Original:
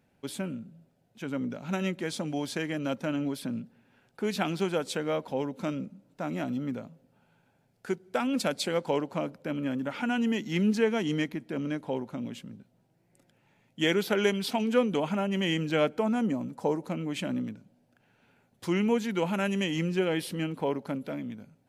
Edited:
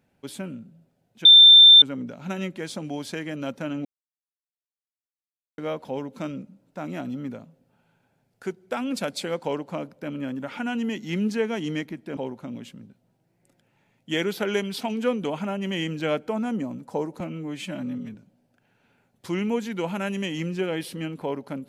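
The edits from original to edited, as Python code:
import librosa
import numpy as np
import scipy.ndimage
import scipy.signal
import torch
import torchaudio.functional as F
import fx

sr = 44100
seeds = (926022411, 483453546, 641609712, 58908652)

y = fx.edit(x, sr, fx.insert_tone(at_s=1.25, length_s=0.57, hz=3570.0, db=-7.0),
    fx.silence(start_s=3.28, length_s=1.73),
    fx.cut(start_s=11.6, length_s=0.27),
    fx.stretch_span(start_s=16.9, length_s=0.63, factor=1.5), tone=tone)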